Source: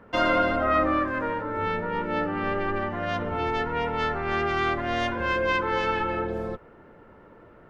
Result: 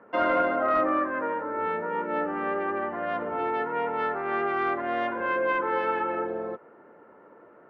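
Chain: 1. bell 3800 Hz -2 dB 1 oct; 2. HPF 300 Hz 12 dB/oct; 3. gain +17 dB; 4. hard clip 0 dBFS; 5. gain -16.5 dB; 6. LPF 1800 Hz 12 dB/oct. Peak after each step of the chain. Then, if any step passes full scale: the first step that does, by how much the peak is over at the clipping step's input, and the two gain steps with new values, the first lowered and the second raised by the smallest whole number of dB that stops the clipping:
-11.5, -11.5, +5.5, 0.0, -16.5, -16.0 dBFS; step 3, 5.5 dB; step 3 +11 dB, step 5 -10.5 dB

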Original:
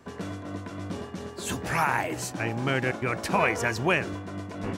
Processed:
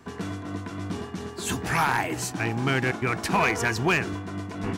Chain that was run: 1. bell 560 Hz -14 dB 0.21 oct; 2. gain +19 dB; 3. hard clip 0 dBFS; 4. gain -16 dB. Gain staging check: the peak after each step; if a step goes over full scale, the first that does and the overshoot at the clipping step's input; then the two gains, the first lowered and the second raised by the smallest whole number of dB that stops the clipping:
-12.0, +7.0, 0.0, -16.0 dBFS; step 2, 7.0 dB; step 2 +12 dB, step 4 -9 dB

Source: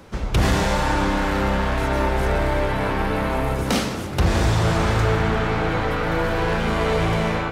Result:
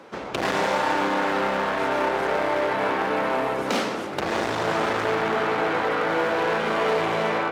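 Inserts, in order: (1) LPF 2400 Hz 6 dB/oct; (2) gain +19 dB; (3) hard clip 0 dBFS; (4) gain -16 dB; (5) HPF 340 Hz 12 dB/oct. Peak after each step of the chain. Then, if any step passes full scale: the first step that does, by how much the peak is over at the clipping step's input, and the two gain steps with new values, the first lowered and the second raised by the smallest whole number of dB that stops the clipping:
-11.5, +7.5, 0.0, -16.0, -11.0 dBFS; step 2, 7.5 dB; step 2 +11 dB, step 4 -8 dB

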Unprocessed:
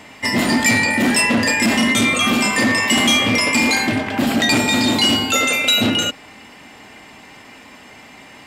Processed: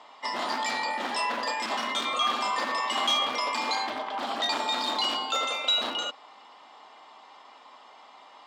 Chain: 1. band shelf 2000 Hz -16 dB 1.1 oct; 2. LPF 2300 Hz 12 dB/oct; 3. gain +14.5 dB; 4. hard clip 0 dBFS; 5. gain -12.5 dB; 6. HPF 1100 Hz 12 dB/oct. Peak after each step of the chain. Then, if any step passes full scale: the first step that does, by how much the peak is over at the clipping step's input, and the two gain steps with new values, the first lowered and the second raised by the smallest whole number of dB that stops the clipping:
-5.5, -7.5, +7.0, 0.0, -12.5, -14.5 dBFS; step 3, 7.0 dB; step 3 +7.5 dB, step 5 -5.5 dB

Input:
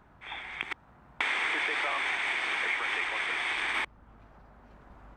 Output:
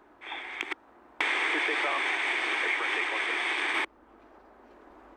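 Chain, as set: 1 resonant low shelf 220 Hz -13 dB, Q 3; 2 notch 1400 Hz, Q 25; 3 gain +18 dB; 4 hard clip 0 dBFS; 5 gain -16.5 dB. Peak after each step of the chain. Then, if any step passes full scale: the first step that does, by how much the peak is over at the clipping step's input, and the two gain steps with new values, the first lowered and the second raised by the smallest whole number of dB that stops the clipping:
-13.0, -13.5, +4.5, 0.0, -16.5 dBFS; step 3, 4.5 dB; step 3 +13 dB, step 5 -11.5 dB

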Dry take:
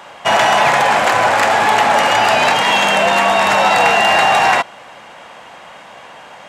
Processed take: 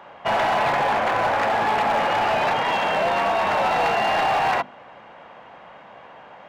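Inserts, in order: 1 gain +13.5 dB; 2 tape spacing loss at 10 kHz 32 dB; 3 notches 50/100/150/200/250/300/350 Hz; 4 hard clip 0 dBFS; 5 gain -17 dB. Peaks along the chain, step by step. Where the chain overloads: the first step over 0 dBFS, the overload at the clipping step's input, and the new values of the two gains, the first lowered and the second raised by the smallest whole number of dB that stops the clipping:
+10.0, +6.5, +7.0, 0.0, -17.0 dBFS; step 1, 7.0 dB; step 1 +6.5 dB, step 5 -10 dB

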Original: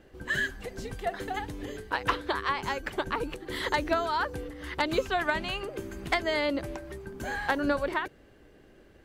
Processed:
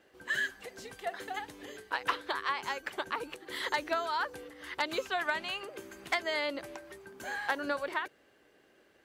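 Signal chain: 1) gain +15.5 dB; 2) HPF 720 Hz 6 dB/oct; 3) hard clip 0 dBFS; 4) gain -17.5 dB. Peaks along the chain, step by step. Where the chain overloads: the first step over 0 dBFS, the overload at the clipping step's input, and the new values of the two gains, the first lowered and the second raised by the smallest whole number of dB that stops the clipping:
+1.5, +4.0, 0.0, -17.5 dBFS; step 1, 4.0 dB; step 1 +11.5 dB, step 4 -13.5 dB

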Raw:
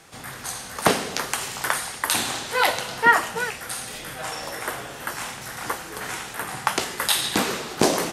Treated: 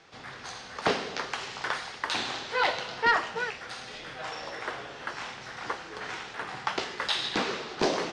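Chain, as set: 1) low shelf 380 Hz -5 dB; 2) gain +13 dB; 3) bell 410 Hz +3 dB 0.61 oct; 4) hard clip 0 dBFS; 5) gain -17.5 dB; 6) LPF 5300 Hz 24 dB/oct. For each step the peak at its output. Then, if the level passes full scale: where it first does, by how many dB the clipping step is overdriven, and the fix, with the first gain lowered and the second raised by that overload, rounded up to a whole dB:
-3.0, +10.0, +10.0, 0.0, -17.5, -15.5 dBFS; step 2, 10.0 dB; step 2 +3 dB, step 5 -7.5 dB

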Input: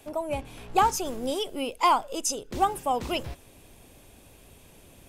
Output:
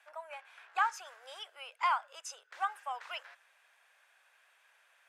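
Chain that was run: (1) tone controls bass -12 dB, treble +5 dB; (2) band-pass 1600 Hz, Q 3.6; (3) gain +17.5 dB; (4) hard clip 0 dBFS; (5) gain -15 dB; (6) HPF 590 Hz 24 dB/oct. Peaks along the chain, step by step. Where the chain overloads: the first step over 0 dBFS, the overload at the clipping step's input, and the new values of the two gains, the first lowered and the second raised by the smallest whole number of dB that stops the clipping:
-10.5, -19.5, -2.0, -2.0, -17.0, -16.5 dBFS; no overload

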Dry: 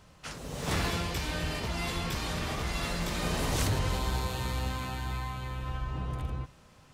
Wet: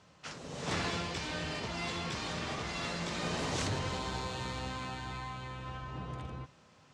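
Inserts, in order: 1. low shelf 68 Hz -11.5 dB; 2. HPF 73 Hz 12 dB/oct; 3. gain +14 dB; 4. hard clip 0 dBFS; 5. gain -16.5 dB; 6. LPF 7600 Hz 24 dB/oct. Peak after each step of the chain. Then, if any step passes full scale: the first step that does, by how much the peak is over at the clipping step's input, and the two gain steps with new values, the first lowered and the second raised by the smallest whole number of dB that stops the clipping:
-19.0, -18.0, -4.0, -4.0, -20.5, -21.5 dBFS; no overload

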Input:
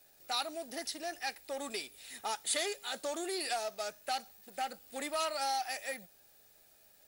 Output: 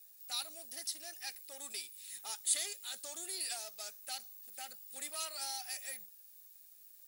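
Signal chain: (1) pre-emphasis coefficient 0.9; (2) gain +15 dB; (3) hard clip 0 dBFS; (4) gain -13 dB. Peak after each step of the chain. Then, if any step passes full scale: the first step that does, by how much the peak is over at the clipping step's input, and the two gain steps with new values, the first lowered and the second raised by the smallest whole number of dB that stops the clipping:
-19.5, -4.5, -4.5, -17.5 dBFS; no overload

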